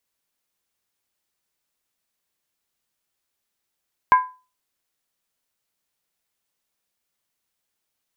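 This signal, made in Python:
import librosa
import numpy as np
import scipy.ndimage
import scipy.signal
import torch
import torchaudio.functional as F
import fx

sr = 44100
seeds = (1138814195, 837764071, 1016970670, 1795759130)

y = fx.strike_skin(sr, length_s=0.63, level_db=-7, hz=1010.0, decay_s=0.32, tilt_db=10.0, modes=5)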